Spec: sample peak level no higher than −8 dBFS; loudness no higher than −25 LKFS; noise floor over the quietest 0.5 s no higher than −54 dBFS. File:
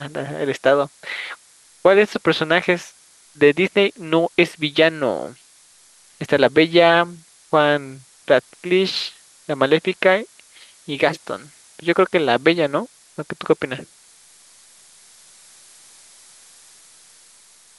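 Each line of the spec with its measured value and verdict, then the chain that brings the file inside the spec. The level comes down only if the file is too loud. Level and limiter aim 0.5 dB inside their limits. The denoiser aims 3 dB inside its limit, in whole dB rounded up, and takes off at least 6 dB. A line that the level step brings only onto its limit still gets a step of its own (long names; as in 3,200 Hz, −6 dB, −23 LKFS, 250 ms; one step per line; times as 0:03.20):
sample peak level −1.5 dBFS: out of spec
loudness −18.5 LKFS: out of spec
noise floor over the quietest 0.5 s −51 dBFS: out of spec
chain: level −7 dB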